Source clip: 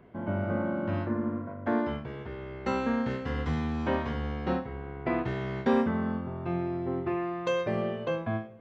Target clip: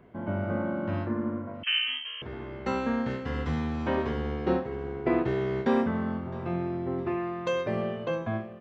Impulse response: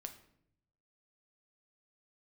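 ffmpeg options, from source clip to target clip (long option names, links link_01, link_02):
-filter_complex "[0:a]asettb=1/sr,asplit=3[link_01][link_02][link_03];[link_01]atrim=end=3.974[link_04];[link_02]atrim=start=3.97:end=5.66,asetpts=PTS-STARTPTS,afade=type=in:duration=0.004:curve=qsin,afade=type=out:start_time=1.686:duration=0.004:curve=qsin,equalizer=frequency=390:width_type=o:width=0.59:gain=9.5[link_05];[link_03]atrim=start=5.656[link_06];[link_04][link_05]acrossfade=duration=0.004:curve1=hsin:curve2=qsin[link_07];[link_07][link_06]acrossfade=duration=0.004:curve1=qsin:curve2=hsin,aecho=1:1:662|1324|1986|2648|3310:0.126|0.0692|0.0381|0.0209|0.0115,asettb=1/sr,asplit=3[link_08][link_09][link_10];[link_08]atrim=end=1.634[link_11];[link_09]atrim=start=1.63:end=2.22,asetpts=PTS-STARTPTS,afade=type=in:duration=0.004:curve=qsin,afade=type=out:start_time=0.586:duration=0.004:curve=qsin,lowpass=frequency=2800:width_type=q:width=0.5098,lowpass=frequency=2800:width_type=q:width=0.6013,lowpass=frequency=2800:width_type=q:width=0.9,lowpass=frequency=2800:width_type=q:width=2.563,afreqshift=-3300[link_12];[link_10]atrim=start=2.216[link_13];[link_11][link_12]acrossfade=duration=0.004:curve1=hsin:curve2=qsin[link_14];[link_14][link_13]acrossfade=duration=0.004:curve1=qsin:curve2=hsin"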